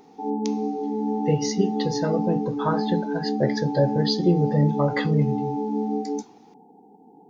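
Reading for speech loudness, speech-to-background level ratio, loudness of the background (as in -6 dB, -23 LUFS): -25.0 LUFS, 2.0 dB, -27.0 LUFS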